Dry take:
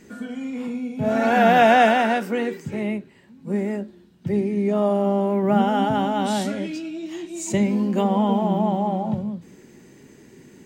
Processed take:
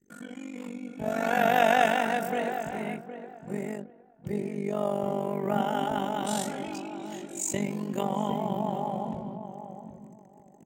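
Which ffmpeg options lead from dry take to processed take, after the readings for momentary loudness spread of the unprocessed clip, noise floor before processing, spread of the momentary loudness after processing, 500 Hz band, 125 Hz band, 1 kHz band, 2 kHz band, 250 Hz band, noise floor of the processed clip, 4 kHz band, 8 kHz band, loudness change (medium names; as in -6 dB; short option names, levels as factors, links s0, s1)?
16 LU, -50 dBFS, 18 LU, -7.5 dB, -9.0 dB, -7.0 dB, -6.0 dB, -10.5 dB, -55 dBFS, -6.0 dB, +0.5 dB, -8.0 dB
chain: -filter_complex "[0:a]acrossover=split=400[s0][s1];[s1]aexciter=amount=1.3:drive=9.3:freq=6700[s2];[s0][s2]amix=inputs=2:normalize=0,lowshelf=f=410:g=-6.5,tremolo=f=48:d=0.857,anlmdn=0.00631,asplit=2[s3][s4];[s4]adelay=763,lowpass=f=1200:p=1,volume=0.355,asplit=2[s5][s6];[s6]adelay=763,lowpass=f=1200:p=1,volume=0.22,asplit=2[s7][s8];[s8]adelay=763,lowpass=f=1200:p=1,volume=0.22[s9];[s3][s5][s7][s9]amix=inputs=4:normalize=0,volume=0.794"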